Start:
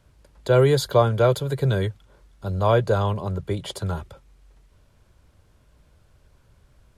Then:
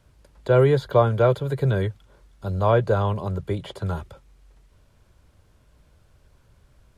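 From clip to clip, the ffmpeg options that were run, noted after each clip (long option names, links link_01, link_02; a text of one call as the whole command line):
ffmpeg -i in.wav -filter_complex "[0:a]acrossover=split=2900[link_01][link_02];[link_02]acompressor=threshold=-49dB:ratio=4:attack=1:release=60[link_03];[link_01][link_03]amix=inputs=2:normalize=0" out.wav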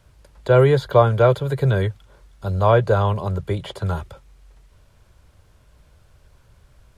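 ffmpeg -i in.wav -af "equalizer=frequency=260:width_type=o:width=1.3:gain=-4.5,volume=4.5dB" out.wav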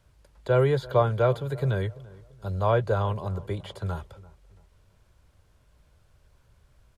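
ffmpeg -i in.wav -filter_complex "[0:a]asplit=2[link_01][link_02];[link_02]adelay=339,lowpass=frequency=1300:poles=1,volume=-20dB,asplit=2[link_03][link_04];[link_04]adelay=339,lowpass=frequency=1300:poles=1,volume=0.37,asplit=2[link_05][link_06];[link_06]adelay=339,lowpass=frequency=1300:poles=1,volume=0.37[link_07];[link_01][link_03][link_05][link_07]amix=inputs=4:normalize=0,volume=-7.5dB" out.wav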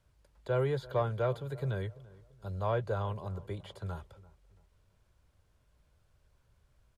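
ffmpeg -i in.wav -af "asoftclip=type=tanh:threshold=-10dB,volume=-8dB" out.wav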